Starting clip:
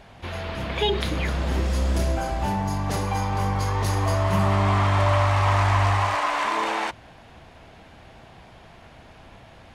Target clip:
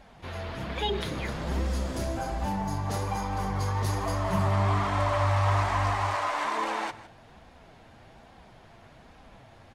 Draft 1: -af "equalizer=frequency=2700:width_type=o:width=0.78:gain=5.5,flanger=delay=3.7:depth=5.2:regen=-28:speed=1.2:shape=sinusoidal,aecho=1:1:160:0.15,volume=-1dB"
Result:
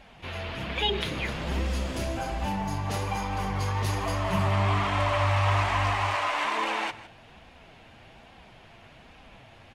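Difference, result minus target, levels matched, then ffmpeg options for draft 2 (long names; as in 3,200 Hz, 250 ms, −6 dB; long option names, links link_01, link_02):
2,000 Hz band +3.0 dB
-af "equalizer=frequency=2700:width_type=o:width=0.78:gain=-3.5,flanger=delay=3.7:depth=5.2:regen=-28:speed=1.2:shape=sinusoidal,aecho=1:1:160:0.15,volume=-1dB"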